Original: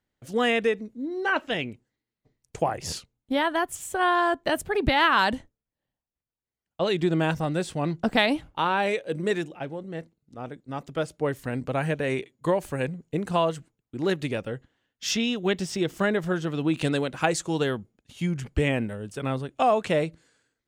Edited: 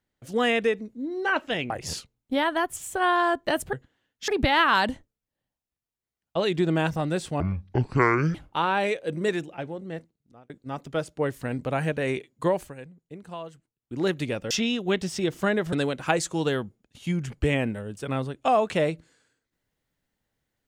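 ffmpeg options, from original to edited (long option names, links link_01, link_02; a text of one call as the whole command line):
ffmpeg -i in.wav -filter_complex "[0:a]asplit=11[link_01][link_02][link_03][link_04][link_05][link_06][link_07][link_08][link_09][link_10][link_11];[link_01]atrim=end=1.702[link_12];[link_02]atrim=start=2.688:end=4.722[link_13];[link_03]atrim=start=14.528:end=15.082[link_14];[link_04]atrim=start=4.718:end=7.844[link_15];[link_05]atrim=start=7.84:end=8.37,asetpts=PTS-STARTPTS,asetrate=24696,aresample=44100,atrim=end_sample=41737,asetpts=PTS-STARTPTS[link_16];[link_06]atrim=start=8.366:end=10.52,asetpts=PTS-STARTPTS,afade=type=out:start_time=1.594:duration=0.56[link_17];[link_07]atrim=start=10.52:end=12.76,asetpts=PTS-STARTPTS,afade=type=in:duration=0.004:curve=hsin,afade=type=out:start_time=2.08:duration=0.16:silence=0.199526[link_18];[link_08]atrim=start=12.76:end=13.8,asetpts=PTS-STARTPTS,volume=-14dB[link_19];[link_09]atrim=start=13.8:end=14.532,asetpts=PTS-STARTPTS,afade=type=in:duration=0.16:silence=0.199526[link_20];[link_10]atrim=start=15.078:end=16.302[link_21];[link_11]atrim=start=16.868[link_22];[link_12][link_13]acrossfade=duration=0.004:curve1=hsin:curve2=hsin[link_23];[link_23][link_14]acrossfade=duration=0.004:curve1=hsin:curve2=hsin[link_24];[link_24][link_15]acrossfade=duration=0.004:curve1=hsin:curve2=hsin[link_25];[link_25][link_16]acrossfade=duration=0.004:curve1=hsin:curve2=hsin[link_26];[link_17][link_18][link_19][link_20]concat=n=4:v=0:a=1[link_27];[link_26][link_27]acrossfade=duration=0.004:curve1=hsin:curve2=hsin[link_28];[link_28][link_21]acrossfade=duration=0.004:curve1=hsin:curve2=hsin[link_29];[link_29][link_22]acrossfade=duration=0.004:curve1=hsin:curve2=hsin" out.wav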